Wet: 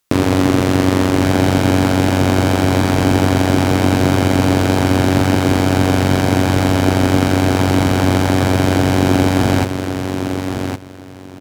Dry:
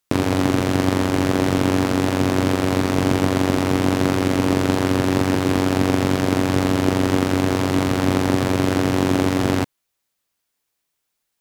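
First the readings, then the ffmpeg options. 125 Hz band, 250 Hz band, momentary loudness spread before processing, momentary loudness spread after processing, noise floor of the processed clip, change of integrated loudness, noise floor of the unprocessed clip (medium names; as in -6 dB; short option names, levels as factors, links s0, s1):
+7.5 dB, +4.5 dB, 1 LU, 6 LU, -35 dBFS, +4.5 dB, -77 dBFS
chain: -filter_complex "[0:a]acontrast=62,asplit=2[s0][s1];[s1]aecho=0:1:1113|2226|3339:0.447|0.0849|0.0161[s2];[s0][s2]amix=inputs=2:normalize=0"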